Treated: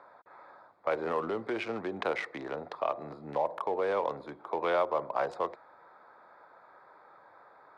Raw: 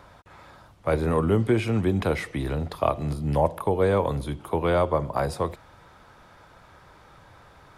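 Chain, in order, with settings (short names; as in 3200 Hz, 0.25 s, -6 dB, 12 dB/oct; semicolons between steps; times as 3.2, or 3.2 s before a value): Wiener smoothing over 15 samples; limiter -16 dBFS, peak gain reduction 8 dB; BPF 530–4700 Hz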